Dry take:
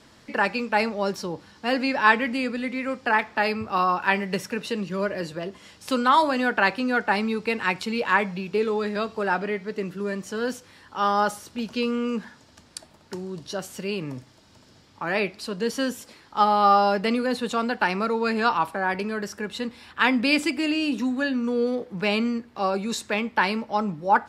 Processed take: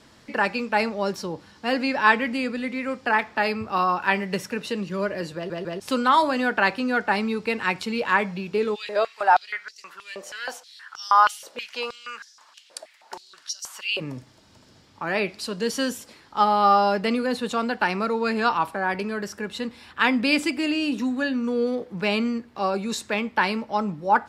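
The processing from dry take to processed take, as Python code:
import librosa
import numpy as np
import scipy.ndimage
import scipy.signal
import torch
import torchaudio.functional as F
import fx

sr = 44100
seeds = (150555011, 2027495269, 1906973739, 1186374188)

y = fx.filter_held_highpass(x, sr, hz=6.3, low_hz=550.0, high_hz=5600.0, at=(8.74, 13.99), fade=0.02)
y = fx.peak_eq(y, sr, hz=7600.0, db=4.5, octaves=2.6, at=(15.28, 15.98))
y = fx.edit(y, sr, fx.stutter_over(start_s=5.35, slice_s=0.15, count=3), tone=tone)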